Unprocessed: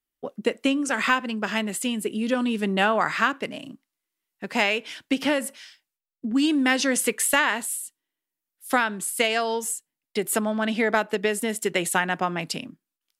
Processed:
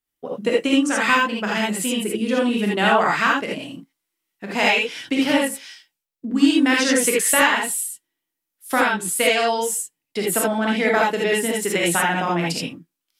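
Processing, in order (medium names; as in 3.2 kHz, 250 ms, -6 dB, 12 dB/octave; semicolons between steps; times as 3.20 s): gated-style reverb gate 100 ms rising, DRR -3 dB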